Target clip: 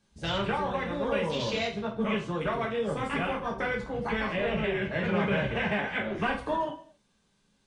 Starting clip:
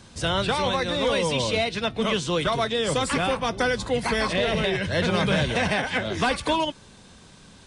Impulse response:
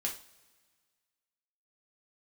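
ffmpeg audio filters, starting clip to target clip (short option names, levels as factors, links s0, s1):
-filter_complex "[0:a]asettb=1/sr,asplit=3[s0][s1][s2];[s0]atrim=end=3.814[s3];[s1]atrim=start=3.81:end=6.16,asetpts=PTS-STARTPTS,afade=t=in:d=0.004:c=qsin,afade=t=out:st=2.346:d=0.004:c=qsin,lowpass=7200[s4];[s2]atrim=start=6.156[s5];[s3][s4]acrossfade=d=0.004:c1=hsin:c2=qsin[s6];[s6][s5]acrossfade=d=0.004:c1=qsin:c2=hsin,afwtdn=0.0355[s7];[1:a]atrim=start_sample=2205,afade=t=out:st=0.33:d=0.01,atrim=end_sample=14994[s8];[s7][s8]afir=irnorm=-1:irlink=0,volume=0.473"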